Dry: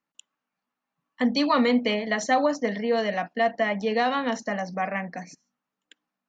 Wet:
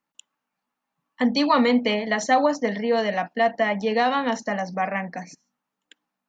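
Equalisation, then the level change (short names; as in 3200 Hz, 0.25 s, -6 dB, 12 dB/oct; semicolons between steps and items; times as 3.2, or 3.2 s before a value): bell 880 Hz +4.5 dB 0.26 oct; +2.0 dB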